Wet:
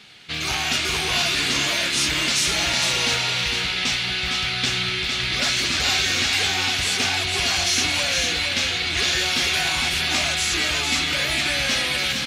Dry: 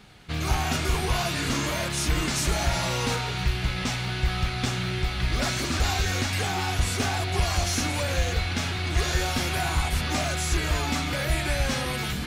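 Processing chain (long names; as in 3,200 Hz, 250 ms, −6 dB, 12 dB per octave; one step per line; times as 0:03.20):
meter weighting curve D
on a send: single-tap delay 457 ms −5.5 dB
on the sum: level −1 dB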